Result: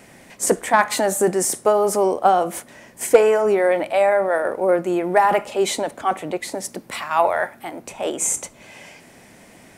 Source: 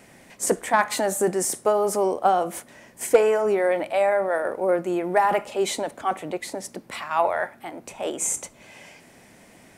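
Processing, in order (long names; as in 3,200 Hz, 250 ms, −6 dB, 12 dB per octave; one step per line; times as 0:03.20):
0:06.53–0:07.82: high-shelf EQ 7,700 Hz +5.5 dB
level +4 dB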